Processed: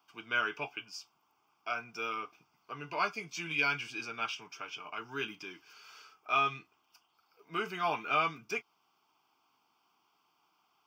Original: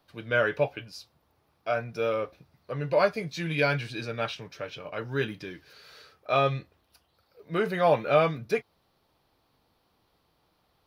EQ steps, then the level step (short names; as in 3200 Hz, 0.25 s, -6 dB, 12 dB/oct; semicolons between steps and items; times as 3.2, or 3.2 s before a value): fixed phaser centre 2700 Hz, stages 8; dynamic EQ 810 Hz, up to -5 dB, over -45 dBFS, Q 1.1; HPF 420 Hz 12 dB/oct; +2.0 dB